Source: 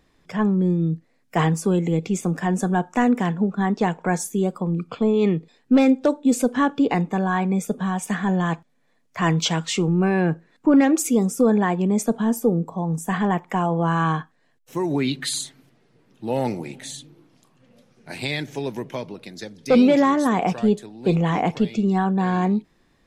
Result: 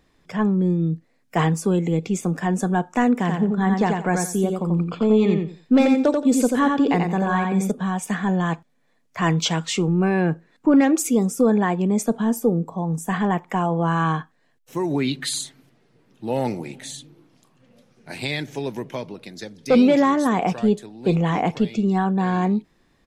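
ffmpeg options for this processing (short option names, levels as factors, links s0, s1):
-filter_complex "[0:a]asplit=3[s0][s1][s2];[s0]afade=t=out:st=3.27:d=0.02[s3];[s1]aecho=1:1:88|176|264:0.631|0.133|0.0278,afade=t=in:st=3.27:d=0.02,afade=t=out:st=7.7:d=0.02[s4];[s2]afade=t=in:st=7.7:d=0.02[s5];[s3][s4][s5]amix=inputs=3:normalize=0"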